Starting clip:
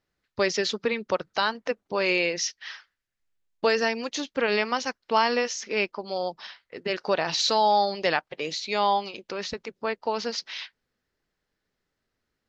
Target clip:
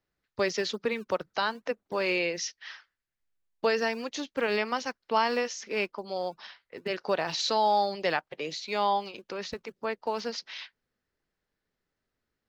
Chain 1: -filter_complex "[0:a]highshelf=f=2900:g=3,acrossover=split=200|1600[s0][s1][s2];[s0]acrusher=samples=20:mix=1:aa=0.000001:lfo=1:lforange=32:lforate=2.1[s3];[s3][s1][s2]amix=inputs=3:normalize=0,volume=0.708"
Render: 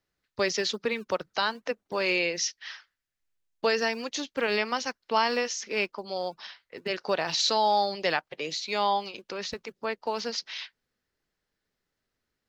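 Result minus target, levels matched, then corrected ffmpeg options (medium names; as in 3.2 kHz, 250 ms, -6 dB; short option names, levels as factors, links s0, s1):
8 kHz band +4.0 dB
-filter_complex "[0:a]highshelf=f=2900:g=-3.5,acrossover=split=200|1600[s0][s1][s2];[s0]acrusher=samples=20:mix=1:aa=0.000001:lfo=1:lforange=32:lforate=2.1[s3];[s3][s1][s2]amix=inputs=3:normalize=0,volume=0.708"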